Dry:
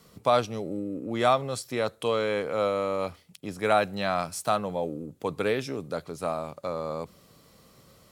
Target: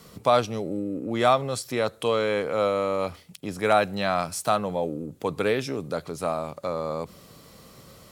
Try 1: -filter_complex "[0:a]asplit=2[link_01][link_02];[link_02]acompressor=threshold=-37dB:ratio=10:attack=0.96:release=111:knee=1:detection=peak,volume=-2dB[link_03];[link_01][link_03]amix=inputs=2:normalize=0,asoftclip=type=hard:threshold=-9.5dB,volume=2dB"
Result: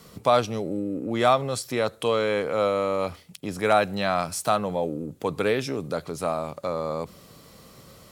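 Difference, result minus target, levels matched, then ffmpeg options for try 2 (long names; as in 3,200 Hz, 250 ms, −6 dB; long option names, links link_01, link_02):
downward compressor: peak gain reduction −6 dB
-filter_complex "[0:a]asplit=2[link_01][link_02];[link_02]acompressor=threshold=-43.5dB:ratio=10:attack=0.96:release=111:knee=1:detection=peak,volume=-2dB[link_03];[link_01][link_03]amix=inputs=2:normalize=0,asoftclip=type=hard:threshold=-9.5dB,volume=2dB"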